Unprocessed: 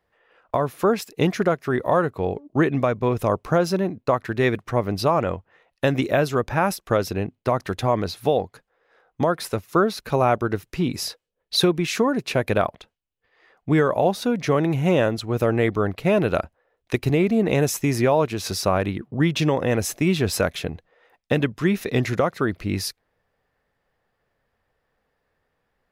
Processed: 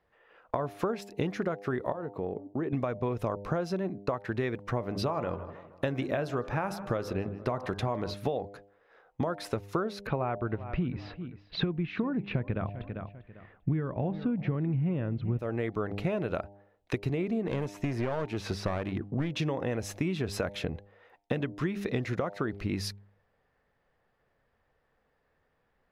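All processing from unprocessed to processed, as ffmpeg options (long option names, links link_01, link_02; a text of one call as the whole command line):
ffmpeg -i in.wav -filter_complex "[0:a]asettb=1/sr,asplit=3[link_01][link_02][link_03];[link_01]atrim=end=1.924[link_04];[link_02]atrim=start=1.92:end=2.73,asetpts=PTS-STARTPTS,afade=type=in:duration=0.004:curve=qsin,afade=type=out:start_time=0.806:duration=0.004:curve=qsin,acompressor=threshold=-29dB:ratio=3:attack=3.2:release=140:knee=1:detection=peak,highpass=frequency=480:poles=1,tiltshelf=frequency=670:gain=9[link_05];[link_03]atrim=start=2.726[link_06];[link_04][link_05]acrossfade=duration=0.004:curve1=hsin:curve2=qsin[link_07];[link_07][link_06]acrossfade=duration=0.004:curve1=qsin:curve2=hsin,asettb=1/sr,asplit=3[link_08][link_09][link_10];[link_08]atrim=end=4.794[link_11];[link_09]atrim=start=4.79:end=8.14,asetpts=PTS-STARTPTS,afade=type=in:duration=0.004:curve=qsin,afade=type=out:start_time=3.346:duration=0.004:curve=qsin,bandreject=frequency=85.58:width_type=h:width=4,bandreject=frequency=171.16:width_type=h:width=4,bandreject=frequency=256.74:width_type=h:width=4,bandreject=frequency=342.32:width_type=h:width=4,bandreject=frequency=427.9:width_type=h:width=4,bandreject=frequency=513.48:width_type=h:width=4,bandreject=frequency=599.06:width_type=h:width=4,bandreject=frequency=684.64:width_type=h:width=4,bandreject=frequency=770.22:width_type=h:width=4,bandreject=frequency=855.8:width_type=h:width=4,bandreject=frequency=941.38:width_type=h:width=4,bandreject=frequency=1026.96:width_type=h:width=4,bandreject=frequency=1112.54:width_type=h:width=4,bandreject=frequency=1198.12:width_type=h:width=4,bandreject=frequency=1283.7:width_type=h:width=4,bandreject=frequency=1369.28:width_type=h:width=4,bandreject=frequency=1454.86:width_type=h:width=4,bandreject=frequency=1540.44:width_type=h:width=4,bandreject=frequency=1626.02:width_type=h:width=4,bandreject=frequency=1711.6:width_type=h:width=4,asplit=2[link_12][link_13];[link_13]adelay=157,lowpass=frequency=2800:poles=1,volume=-19.5dB,asplit=2[link_14][link_15];[link_15]adelay=157,lowpass=frequency=2800:poles=1,volume=0.48,asplit=2[link_16][link_17];[link_17]adelay=157,lowpass=frequency=2800:poles=1,volume=0.48,asplit=2[link_18][link_19];[link_19]adelay=157,lowpass=frequency=2800:poles=1,volume=0.48[link_20];[link_12][link_14][link_16][link_18][link_20]amix=inputs=5:normalize=0,atrim=end_sample=147735[link_21];[link_10]atrim=start=8.136[link_22];[link_11][link_21]acrossfade=duration=0.004:curve1=hsin:curve2=qsin[link_23];[link_23][link_22]acrossfade=duration=0.004:curve1=qsin:curve2=hsin,asettb=1/sr,asplit=3[link_24][link_25][link_26];[link_24]atrim=end=10.074[link_27];[link_25]atrim=start=10.07:end=15.39,asetpts=PTS-STARTPTS,afade=type=in:duration=0.004:curve=qsin,afade=type=out:start_time=5.316:duration=0.004:curve=qsin,lowpass=frequency=3000:width=0.5412,lowpass=frequency=3000:width=1.3066,asubboost=boost=6:cutoff=250,aecho=1:1:396|792:0.1|0.023,atrim=end_sample=234612[link_28];[link_26]atrim=start=15.386[link_29];[link_27][link_28]acrossfade=duration=0.004:curve1=hsin:curve2=qsin[link_30];[link_30][link_29]acrossfade=duration=0.004:curve1=qsin:curve2=hsin,asettb=1/sr,asplit=3[link_31][link_32][link_33];[link_31]atrim=end=17.474[link_34];[link_32]atrim=start=17.47:end=19.36,asetpts=PTS-STARTPTS,afade=type=in:duration=0.004:curve=qsin,afade=type=out:start_time=1.886:duration=0.004:curve=qsin,acrossover=split=3400[link_35][link_36];[link_36]acompressor=threshold=-38dB:ratio=4:attack=1:release=60[link_37];[link_35][link_37]amix=inputs=2:normalize=0,aeval=exprs='clip(val(0),-1,0.0794)':channel_layout=same[link_38];[link_33]atrim=start=19.356[link_39];[link_34][link_38]acrossfade=duration=0.004:curve1=hsin:curve2=qsin[link_40];[link_40][link_39]acrossfade=duration=0.004:curve1=qsin:curve2=hsin,aemphasis=mode=reproduction:type=50kf,bandreject=frequency=100.5:width_type=h:width=4,bandreject=frequency=201:width_type=h:width=4,bandreject=frequency=301.5:width_type=h:width=4,bandreject=frequency=402:width_type=h:width=4,bandreject=frequency=502.5:width_type=h:width=4,bandreject=frequency=603:width_type=h:width=4,bandreject=frequency=703.5:width_type=h:width=4,bandreject=frequency=804:width_type=h:width=4,bandreject=frequency=904.5:width_type=h:width=4,acompressor=threshold=-27dB:ratio=10" out.wav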